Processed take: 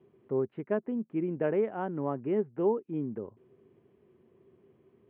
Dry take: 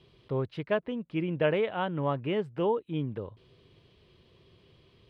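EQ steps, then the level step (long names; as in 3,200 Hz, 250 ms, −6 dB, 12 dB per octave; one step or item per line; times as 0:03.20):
loudspeaker in its box 110–2,000 Hz, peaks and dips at 220 Hz +7 dB, 390 Hz +9 dB, 760 Hz +5 dB
parametric band 270 Hz +5.5 dB 0.77 octaves
−7.0 dB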